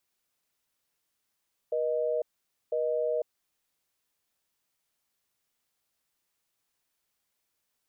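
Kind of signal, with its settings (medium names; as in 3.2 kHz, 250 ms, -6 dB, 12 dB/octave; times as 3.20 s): call progress tone busy tone, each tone -28.5 dBFS 1.57 s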